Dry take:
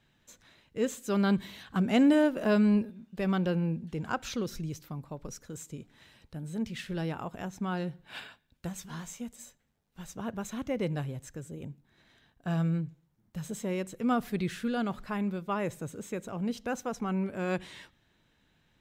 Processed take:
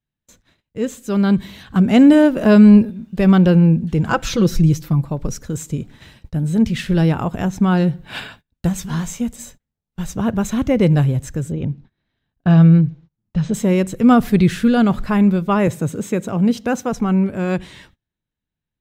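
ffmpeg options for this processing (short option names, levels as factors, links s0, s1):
-filter_complex "[0:a]asettb=1/sr,asplit=3[s0][s1][s2];[s0]atrim=end=4.094[s3];[s1]atrim=start=4.09:end=5.06,asetpts=PTS-STARTPTS,afade=t=in:d=0.004:c=qsin,afade=t=out:st=0.966:d=0.004:c=qsin,aecho=1:1:6:0.65,atrim=end_sample=42777[s4];[s2]atrim=start=5.056[s5];[s3][s4]acrossfade=d=0.004:c1=hsin:c2=qsin[s6];[s6][s5]acrossfade=d=0.004:c1=qsin:c2=hsin,asettb=1/sr,asplit=3[s7][s8][s9];[s7]atrim=end=11.524[s10];[s8]atrim=start=11.52:end=13.54,asetpts=PTS-STARTPTS,afade=t=in:d=0.004:c=qsin,afade=t=out:st=2.016:d=0.004:c=qsin,lowpass=f=5100:w=0.5412,lowpass=f=5100:w=1.3066[s11];[s9]atrim=start=13.536[s12];[s10][s11]acrossfade=d=0.004:c1=hsin:c2=qsin[s13];[s13][s12]acrossfade=d=0.004:c1=qsin:c2=hsin,asettb=1/sr,asplit=3[s14][s15][s16];[s14]atrim=end=15.674[s17];[s15]atrim=start=15.67:end=16.93,asetpts=PTS-STARTPTS,afade=t=in:d=0.004:c=qsin,afade=t=out:st=1.256:d=0.004:c=qsin,highpass=110[s18];[s16]atrim=start=16.926[s19];[s17][s18]acrossfade=d=0.004:c1=hsin:c2=qsin[s20];[s20][s19]acrossfade=d=0.004:c1=qsin:c2=hsin,agate=range=0.0501:threshold=0.00126:ratio=16:detection=peak,lowshelf=f=220:g=10.5,dynaudnorm=f=230:g=17:m=2.82,volume=1.58"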